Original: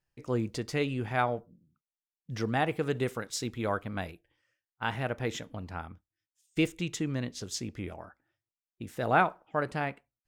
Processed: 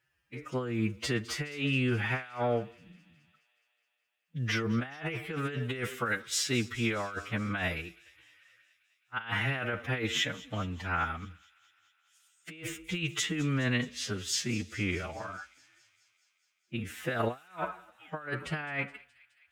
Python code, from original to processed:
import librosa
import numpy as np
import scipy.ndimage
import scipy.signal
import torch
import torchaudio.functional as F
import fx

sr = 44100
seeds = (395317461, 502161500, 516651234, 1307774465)

p1 = scipy.signal.sosfilt(scipy.signal.butter(4, 40.0, 'highpass', fs=sr, output='sos'), x)
p2 = fx.band_shelf(p1, sr, hz=2000.0, db=9.5, octaves=1.7)
p3 = fx.over_compress(p2, sr, threshold_db=-31.0, ratio=-0.5)
p4 = fx.stretch_vocoder(p3, sr, factor=1.9)
y = p4 + fx.echo_wet_highpass(p4, sr, ms=210, feedback_pct=69, hz=3100.0, wet_db=-17.0, dry=0)